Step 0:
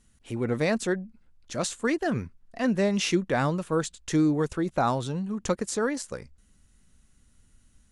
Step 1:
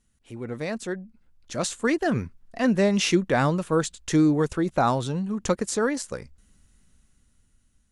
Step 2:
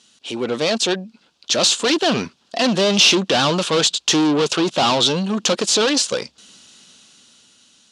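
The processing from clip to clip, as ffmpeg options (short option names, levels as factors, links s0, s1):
-af "dynaudnorm=f=300:g=9:m=3.76,volume=0.473"
-filter_complex "[0:a]asplit=2[s0][s1];[s1]highpass=f=720:p=1,volume=28.2,asoftclip=type=tanh:threshold=0.376[s2];[s0][s2]amix=inputs=2:normalize=0,lowpass=f=1300:p=1,volume=0.501,highpass=170,lowpass=3900,aexciter=amount=11:drive=6:freq=3000,volume=0.891"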